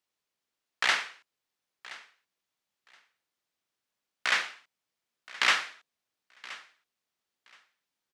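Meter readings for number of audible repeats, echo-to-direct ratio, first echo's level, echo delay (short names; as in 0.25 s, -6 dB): 2, -19.0 dB, -19.0 dB, 1.023 s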